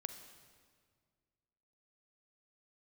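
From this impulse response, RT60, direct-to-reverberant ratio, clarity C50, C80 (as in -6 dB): 1.9 s, 8.0 dB, 9.0 dB, 10.5 dB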